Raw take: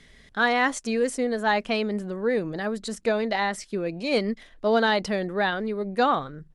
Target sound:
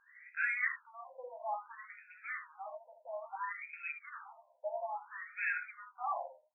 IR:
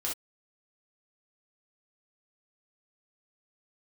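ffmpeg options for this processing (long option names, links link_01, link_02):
-filter_complex "[0:a]asoftclip=type=tanh:threshold=-26.5dB,lowpass=frequency=2500:width_type=q:width=8.4,asplit=2[link_01][link_02];[link_02]adelay=13,volume=-5dB[link_03];[link_01][link_03]amix=inputs=2:normalize=0,asplit=2[link_04][link_05];[1:a]atrim=start_sample=2205,adelay=18[link_06];[link_05][link_06]afir=irnorm=-1:irlink=0,volume=-8dB[link_07];[link_04][link_07]amix=inputs=2:normalize=0,afftfilt=real='re*between(b*sr/1024,700*pow(1900/700,0.5+0.5*sin(2*PI*0.59*pts/sr))/1.41,700*pow(1900/700,0.5+0.5*sin(2*PI*0.59*pts/sr))*1.41)':imag='im*between(b*sr/1024,700*pow(1900/700,0.5+0.5*sin(2*PI*0.59*pts/sr))/1.41,700*pow(1900/700,0.5+0.5*sin(2*PI*0.59*pts/sr))*1.41)':win_size=1024:overlap=0.75,volume=-8.5dB"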